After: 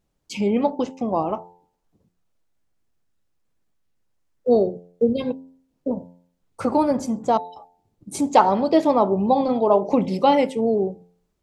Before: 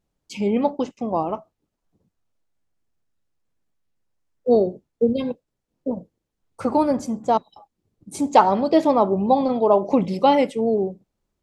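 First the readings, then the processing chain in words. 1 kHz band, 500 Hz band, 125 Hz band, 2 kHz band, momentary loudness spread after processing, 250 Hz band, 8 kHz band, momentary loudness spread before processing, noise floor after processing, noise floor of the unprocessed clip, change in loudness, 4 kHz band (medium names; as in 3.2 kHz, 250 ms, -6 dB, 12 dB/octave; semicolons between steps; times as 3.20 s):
-0.5 dB, 0.0 dB, 0.0 dB, 0.0 dB, 12 LU, 0.0 dB, +2.5 dB, 12 LU, -73 dBFS, -80 dBFS, -0.5 dB, 0.0 dB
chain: de-hum 88.09 Hz, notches 11; in parallel at -3 dB: compression, threshold -27 dBFS, peak gain reduction 17 dB; on the sum: trim -1.5 dB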